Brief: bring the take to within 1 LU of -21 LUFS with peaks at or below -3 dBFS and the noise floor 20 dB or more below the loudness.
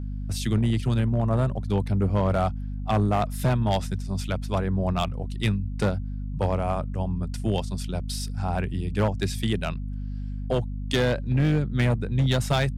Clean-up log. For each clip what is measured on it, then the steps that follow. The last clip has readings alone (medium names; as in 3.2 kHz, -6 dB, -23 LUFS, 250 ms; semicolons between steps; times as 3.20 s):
clipped samples 1.7%; clipping level -16.5 dBFS; hum 50 Hz; highest harmonic 250 Hz; hum level -29 dBFS; loudness -26.5 LUFS; peak level -16.5 dBFS; loudness target -21.0 LUFS
-> clip repair -16.5 dBFS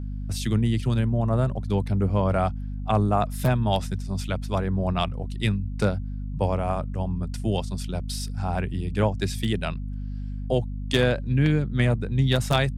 clipped samples 0.0%; hum 50 Hz; highest harmonic 250 Hz; hum level -29 dBFS
-> hum notches 50/100/150/200/250 Hz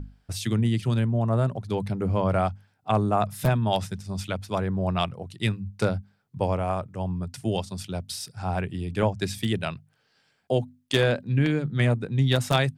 hum not found; loudness -26.5 LUFS; peak level -7.0 dBFS; loudness target -21.0 LUFS
-> trim +5.5 dB; peak limiter -3 dBFS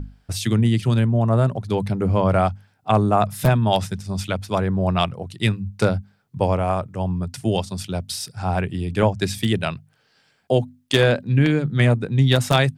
loudness -21.0 LUFS; peak level -3.0 dBFS; noise floor -63 dBFS